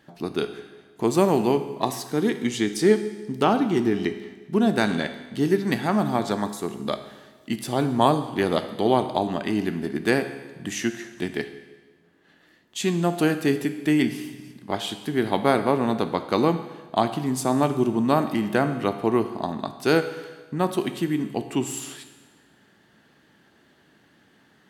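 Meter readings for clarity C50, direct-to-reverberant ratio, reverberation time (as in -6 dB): 10.5 dB, 8.5 dB, 1.3 s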